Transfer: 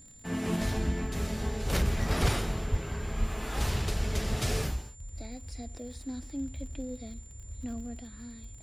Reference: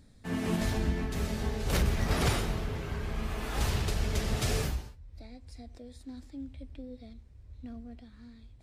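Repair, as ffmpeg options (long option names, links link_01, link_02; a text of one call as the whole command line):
ffmpeg -i in.wav -filter_complex "[0:a]adeclick=threshold=4,bandreject=frequency=7200:width=30,asplit=3[link_01][link_02][link_03];[link_01]afade=type=out:start_time=2.21:duration=0.02[link_04];[link_02]highpass=frequency=140:width=0.5412,highpass=frequency=140:width=1.3066,afade=type=in:start_time=2.21:duration=0.02,afade=type=out:start_time=2.33:duration=0.02[link_05];[link_03]afade=type=in:start_time=2.33:duration=0.02[link_06];[link_04][link_05][link_06]amix=inputs=3:normalize=0,asplit=3[link_07][link_08][link_09];[link_07]afade=type=out:start_time=2.7:duration=0.02[link_10];[link_08]highpass=frequency=140:width=0.5412,highpass=frequency=140:width=1.3066,afade=type=in:start_time=2.7:duration=0.02,afade=type=out:start_time=2.82:duration=0.02[link_11];[link_09]afade=type=in:start_time=2.82:duration=0.02[link_12];[link_10][link_11][link_12]amix=inputs=3:normalize=0,asplit=3[link_13][link_14][link_15];[link_13]afade=type=out:start_time=3.19:duration=0.02[link_16];[link_14]highpass=frequency=140:width=0.5412,highpass=frequency=140:width=1.3066,afade=type=in:start_time=3.19:duration=0.02,afade=type=out:start_time=3.31:duration=0.02[link_17];[link_15]afade=type=in:start_time=3.31:duration=0.02[link_18];[link_16][link_17][link_18]amix=inputs=3:normalize=0,asetnsamples=nb_out_samples=441:pad=0,asendcmd='5 volume volume -6dB',volume=0dB" out.wav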